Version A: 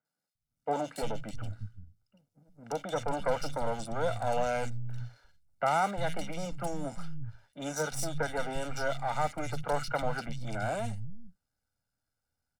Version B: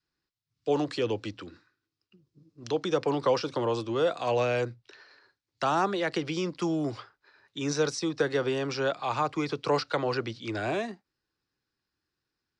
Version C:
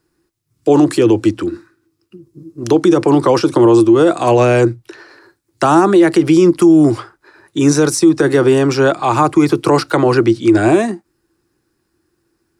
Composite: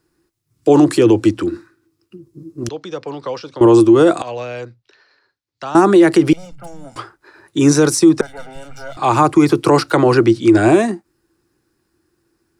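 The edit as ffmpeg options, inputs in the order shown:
-filter_complex "[1:a]asplit=2[s0][s1];[0:a]asplit=2[s2][s3];[2:a]asplit=5[s4][s5][s6][s7][s8];[s4]atrim=end=2.692[s9];[s0]atrim=start=2.688:end=3.612[s10];[s5]atrim=start=3.608:end=4.222[s11];[s1]atrim=start=4.218:end=5.752[s12];[s6]atrim=start=5.748:end=6.332[s13];[s2]atrim=start=6.328:end=6.962[s14];[s7]atrim=start=6.958:end=8.212[s15];[s3]atrim=start=8.208:end=8.972[s16];[s8]atrim=start=8.968[s17];[s9][s10]acrossfade=d=0.004:c1=hsin:c2=hsin[s18];[s18][s11]acrossfade=d=0.004:c1=hsin:c2=hsin[s19];[s19][s12]acrossfade=d=0.004:c1=hsin:c2=hsin[s20];[s20][s13]acrossfade=d=0.004:c1=hsin:c2=hsin[s21];[s21][s14]acrossfade=d=0.004:c1=hsin:c2=hsin[s22];[s22][s15]acrossfade=d=0.004:c1=hsin:c2=hsin[s23];[s23][s16]acrossfade=d=0.004:c1=hsin:c2=hsin[s24];[s24][s17]acrossfade=d=0.004:c1=hsin:c2=hsin"

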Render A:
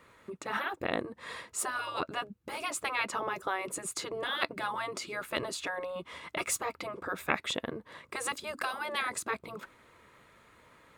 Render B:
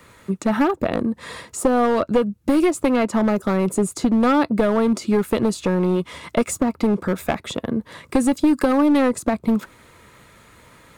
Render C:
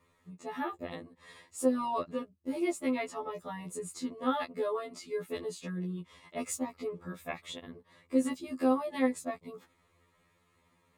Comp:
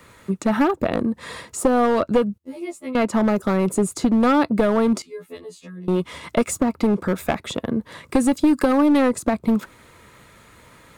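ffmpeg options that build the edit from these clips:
-filter_complex "[2:a]asplit=2[s0][s1];[1:a]asplit=3[s2][s3][s4];[s2]atrim=end=2.382[s5];[s0]atrim=start=2.378:end=2.952[s6];[s3]atrim=start=2.948:end=5.022[s7];[s1]atrim=start=5.018:end=5.882[s8];[s4]atrim=start=5.878[s9];[s5][s6]acrossfade=d=0.004:c1=hsin:c2=hsin[s10];[s10][s7]acrossfade=d=0.004:c1=hsin:c2=hsin[s11];[s11][s8]acrossfade=d=0.004:c1=hsin:c2=hsin[s12];[s12][s9]acrossfade=d=0.004:c1=hsin:c2=hsin"

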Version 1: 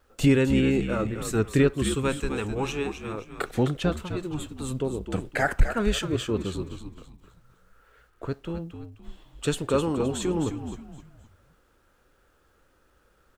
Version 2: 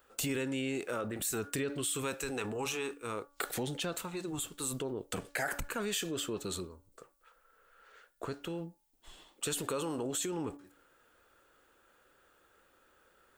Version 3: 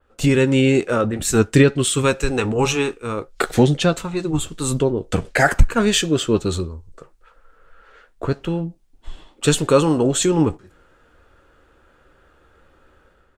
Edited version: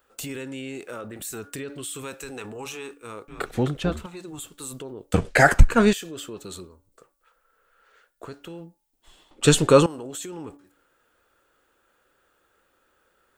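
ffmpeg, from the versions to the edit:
-filter_complex "[2:a]asplit=2[s0][s1];[1:a]asplit=4[s2][s3][s4][s5];[s2]atrim=end=3.282[s6];[0:a]atrim=start=3.278:end=4.062[s7];[s3]atrim=start=4.058:end=5.142[s8];[s0]atrim=start=5.138:end=5.932[s9];[s4]atrim=start=5.928:end=9.312[s10];[s1]atrim=start=9.308:end=9.862[s11];[s5]atrim=start=9.858[s12];[s6][s7]acrossfade=d=0.004:c1=hsin:c2=hsin[s13];[s13][s8]acrossfade=d=0.004:c1=hsin:c2=hsin[s14];[s14][s9]acrossfade=d=0.004:c1=hsin:c2=hsin[s15];[s15][s10]acrossfade=d=0.004:c1=hsin:c2=hsin[s16];[s16][s11]acrossfade=d=0.004:c1=hsin:c2=hsin[s17];[s17][s12]acrossfade=d=0.004:c1=hsin:c2=hsin"

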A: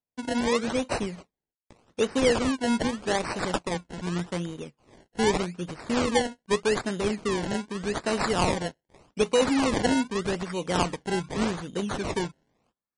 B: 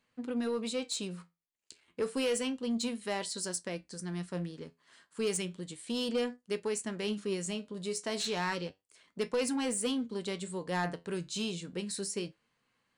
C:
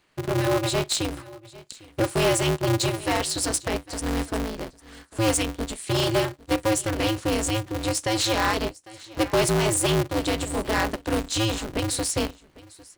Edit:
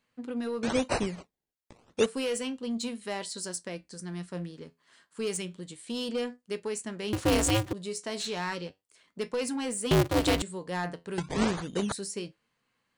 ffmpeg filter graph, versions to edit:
-filter_complex "[0:a]asplit=2[s0][s1];[2:a]asplit=2[s2][s3];[1:a]asplit=5[s4][s5][s6][s7][s8];[s4]atrim=end=0.632[s9];[s0]atrim=start=0.628:end=2.062[s10];[s5]atrim=start=2.058:end=7.132[s11];[s2]atrim=start=7.128:end=7.732[s12];[s6]atrim=start=7.728:end=9.912[s13];[s3]atrim=start=9.908:end=10.422[s14];[s7]atrim=start=10.418:end=11.182[s15];[s1]atrim=start=11.178:end=11.922[s16];[s8]atrim=start=11.918[s17];[s9][s10]acrossfade=d=0.004:c1=hsin:c2=hsin[s18];[s18][s11]acrossfade=d=0.004:c1=hsin:c2=hsin[s19];[s19][s12]acrossfade=d=0.004:c1=hsin:c2=hsin[s20];[s20][s13]acrossfade=d=0.004:c1=hsin:c2=hsin[s21];[s21][s14]acrossfade=d=0.004:c1=hsin:c2=hsin[s22];[s22][s15]acrossfade=d=0.004:c1=hsin:c2=hsin[s23];[s23][s16]acrossfade=d=0.004:c1=hsin:c2=hsin[s24];[s24][s17]acrossfade=d=0.004:c1=hsin:c2=hsin"

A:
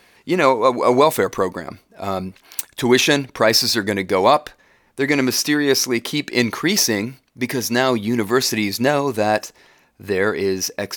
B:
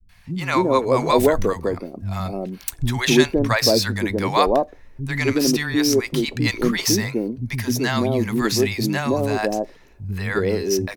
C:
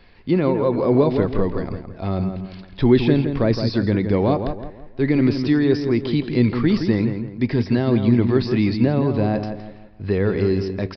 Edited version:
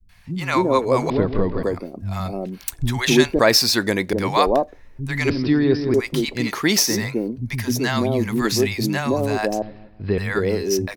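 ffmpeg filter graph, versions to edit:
-filter_complex "[2:a]asplit=3[s0][s1][s2];[0:a]asplit=2[s3][s4];[1:a]asplit=6[s5][s6][s7][s8][s9][s10];[s5]atrim=end=1.102[s11];[s0]atrim=start=1.098:end=1.632[s12];[s6]atrim=start=1.628:end=3.392[s13];[s3]atrim=start=3.388:end=4.132[s14];[s7]atrim=start=4.128:end=5.302[s15];[s1]atrim=start=5.298:end=5.942[s16];[s8]atrim=start=5.938:end=6.57[s17];[s4]atrim=start=6.33:end=7.03[s18];[s9]atrim=start=6.79:end=9.622[s19];[s2]atrim=start=9.618:end=10.182[s20];[s10]atrim=start=10.178[s21];[s11][s12]acrossfade=d=0.004:c1=hsin:c2=hsin[s22];[s22][s13]acrossfade=d=0.004:c1=hsin:c2=hsin[s23];[s23][s14]acrossfade=d=0.004:c1=hsin:c2=hsin[s24];[s24][s15]acrossfade=d=0.004:c1=hsin:c2=hsin[s25];[s25][s16]acrossfade=d=0.004:c1=hsin:c2=hsin[s26];[s26][s17]acrossfade=d=0.004:c1=hsin:c2=hsin[s27];[s27][s18]acrossfade=d=0.24:c1=tri:c2=tri[s28];[s28][s19]acrossfade=d=0.24:c1=tri:c2=tri[s29];[s29][s20]acrossfade=d=0.004:c1=hsin:c2=hsin[s30];[s30][s21]acrossfade=d=0.004:c1=hsin:c2=hsin"

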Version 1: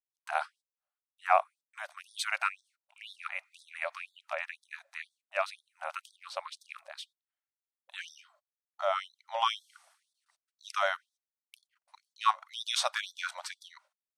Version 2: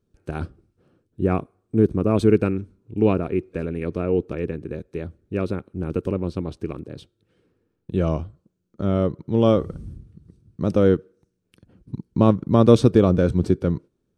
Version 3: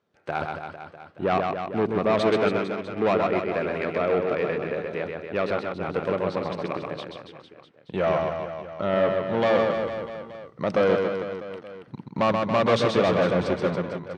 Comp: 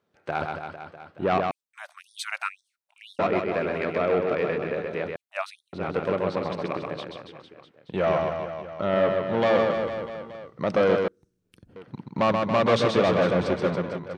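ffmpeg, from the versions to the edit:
-filter_complex "[0:a]asplit=2[s0][s1];[2:a]asplit=4[s2][s3][s4][s5];[s2]atrim=end=1.512[s6];[s0]atrim=start=1.508:end=3.192[s7];[s3]atrim=start=3.188:end=5.162[s8];[s1]atrim=start=5.158:end=5.732[s9];[s4]atrim=start=5.728:end=11.082[s10];[1:a]atrim=start=11.078:end=11.762[s11];[s5]atrim=start=11.758[s12];[s6][s7]acrossfade=d=0.004:c1=hsin:c2=hsin[s13];[s13][s8]acrossfade=d=0.004:c1=hsin:c2=hsin[s14];[s14][s9]acrossfade=d=0.004:c1=hsin:c2=hsin[s15];[s15][s10]acrossfade=d=0.004:c1=hsin:c2=hsin[s16];[s16][s11]acrossfade=d=0.004:c1=hsin:c2=hsin[s17];[s17][s12]acrossfade=d=0.004:c1=hsin:c2=hsin"

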